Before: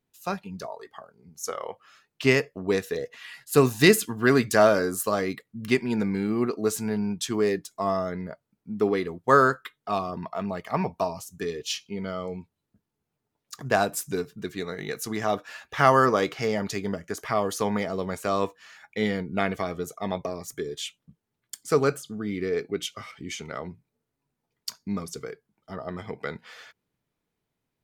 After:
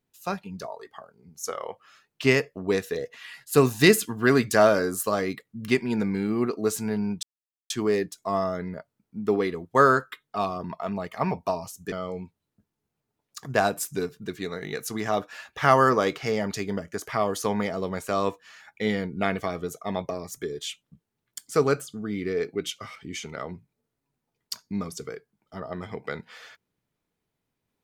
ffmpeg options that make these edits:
ffmpeg -i in.wav -filter_complex "[0:a]asplit=3[link_01][link_02][link_03];[link_01]atrim=end=7.23,asetpts=PTS-STARTPTS,afade=type=out:start_time=7.226:duration=0.004:curve=hsin,apad=pad_dur=0.47[link_04];[link_02]atrim=start=7.23:end=11.452,asetpts=PTS-STARTPTS,afade=type=in:duration=0.004:curve=hsin[link_05];[link_03]atrim=start=12.078[link_06];[link_04][link_05]concat=n=2:v=0:a=1[link_07];[link_07][link_06]acrossfade=duration=0.004:curve1=hsin:curve2=hsin" out.wav

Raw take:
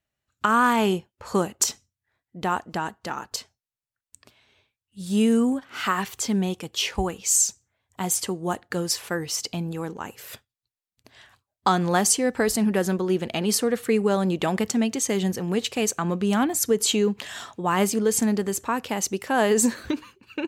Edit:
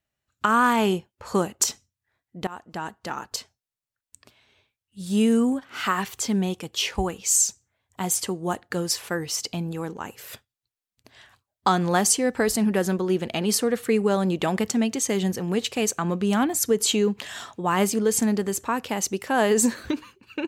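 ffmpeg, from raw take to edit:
ffmpeg -i in.wav -filter_complex "[0:a]asplit=2[link_01][link_02];[link_01]atrim=end=2.47,asetpts=PTS-STARTPTS,afade=type=out:start_time=2.466:duration=0.004:curve=hsin:silence=0.1[link_03];[link_02]atrim=start=2.47,asetpts=PTS-STARTPTS,afade=type=in:duration=0.82:curve=qsin:silence=0.1[link_04];[link_03][link_04]concat=n=2:v=0:a=1" out.wav

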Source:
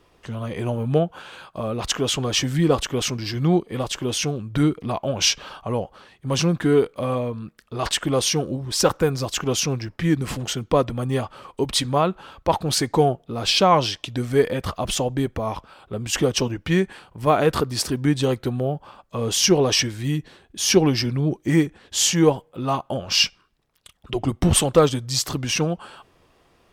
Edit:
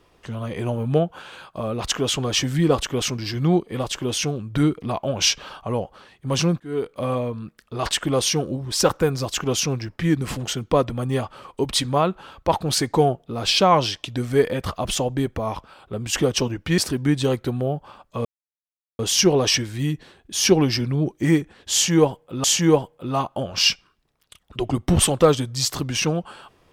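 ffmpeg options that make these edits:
ffmpeg -i in.wav -filter_complex "[0:a]asplit=5[link_01][link_02][link_03][link_04][link_05];[link_01]atrim=end=6.6,asetpts=PTS-STARTPTS,afade=type=out:start_time=6.596:duration=0.004:curve=hsin[link_06];[link_02]atrim=start=6.6:end=16.782,asetpts=PTS-STARTPTS,afade=type=in:duration=0.44[link_07];[link_03]atrim=start=17.768:end=19.24,asetpts=PTS-STARTPTS,afade=type=out:start_time=1.468:duration=0.004:curve=hsin,apad=pad_dur=0.74[link_08];[link_04]atrim=start=19.24:end=22.692,asetpts=PTS-STARTPTS,afade=type=in:duration=0.004:curve=hsin[link_09];[link_05]atrim=start=21.978[link_10];[link_06][link_07]concat=n=2:v=0:a=1[link_11];[link_08][link_09]concat=n=2:v=0:a=1[link_12];[link_11][link_12]acrossfade=duration=0.004:curve1=hsin:curve2=hsin[link_13];[link_13][link_10]acrossfade=duration=0.004:curve1=hsin:curve2=hsin" out.wav

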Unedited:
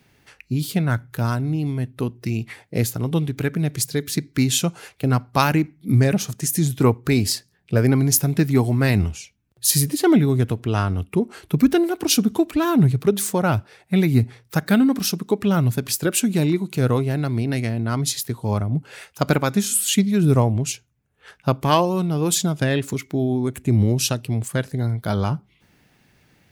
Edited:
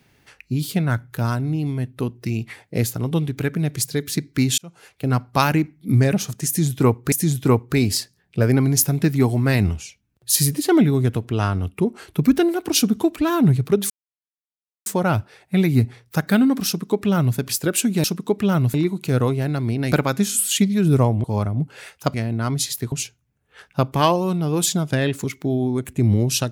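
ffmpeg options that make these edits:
ffmpeg -i in.wav -filter_complex "[0:a]asplit=10[link_01][link_02][link_03][link_04][link_05][link_06][link_07][link_08][link_09][link_10];[link_01]atrim=end=4.58,asetpts=PTS-STARTPTS,afade=type=out:start_time=4.576:duration=0.004:curve=hsin[link_11];[link_02]atrim=start=4.58:end=7.122,asetpts=PTS-STARTPTS,afade=type=in:duration=0.6[link_12];[link_03]atrim=start=6.468:end=13.25,asetpts=PTS-STARTPTS,afade=type=out:start_time=6.778:duration=0.004:curve=hsin,apad=pad_dur=0.96[link_13];[link_04]atrim=start=13.25:end=16.432,asetpts=PTS-STARTPTS,afade=type=in:duration=0.004:curve=hsin[link_14];[link_05]atrim=start=15.058:end=15.762[link_15];[link_06]atrim=start=16.428:end=17.612[link_16];[link_07]atrim=start=19.288:end=20.612[link_17];[link_08]atrim=start=18.388:end=19.292[link_18];[link_09]atrim=start=17.608:end=18.392[link_19];[link_10]atrim=start=20.608[link_20];[link_11][link_12]concat=n=2:v=0:a=1[link_21];[link_13][link_14]concat=n=2:v=0:a=1[link_22];[link_21][link_22]acrossfade=duration=0.004:curve1=hsin:curve2=hsin[link_23];[link_23][link_15]acrossfade=duration=0.004:curve1=hsin:curve2=hsin[link_24];[link_24][link_16]acrossfade=duration=0.004:curve1=hsin:curve2=hsin[link_25];[link_25][link_17]acrossfade=duration=0.004:curve1=hsin:curve2=hsin[link_26];[link_26][link_18]acrossfade=duration=0.004:curve1=hsin:curve2=hsin[link_27];[link_27][link_19]acrossfade=duration=0.004:curve1=hsin:curve2=hsin[link_28];[link_28][link_20]acrossfade=duration=0.004:curve1=hsin:curve2=hsin" out.wav

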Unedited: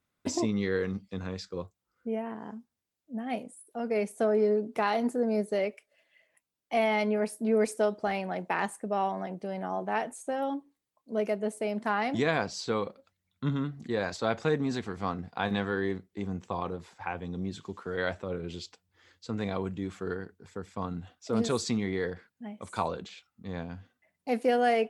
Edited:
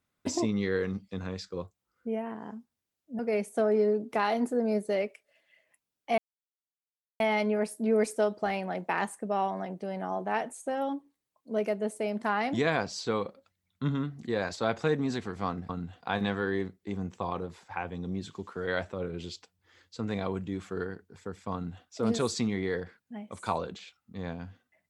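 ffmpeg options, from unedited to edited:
ffmpeg -i in.wav -filter_complex "[0:a]asplit=5[link_01][link_02][link_03][link_04][link_05];[link_01]atrim=end=3.192[link_06];[link_02]atrim=start=3.818:end=6.81,asetpts=PTS-STARTPTS,afade=type=out:start_time=2.988:duration=0.004:curve=hsin,apad=pad_dur=1.02[link_07];[link_03]atrim=start=6.81:end=15.302,asetpts=PTS-STARTPTS,afade=type=in:duration=0.004:curve=hsin[link_08];[link_04]atrim=start=20.828:end=21.142[link_09];[link_05]atrim=start=15.298[link_10];[link_07][link_08]concat=n=2:v=0:a=1[link_11];[link_06][link_11]acrossfade=duration=0.004:curve1=hsin:curve2=hsin[link_12];[link_12][link_09]acrossfade=duration=0.004:curve1=hsin:curve2=hsin[link_13];[link_13][link_10]acrossfade=duration=0.004:curve1=hsin:curve2=hsin" out.wav

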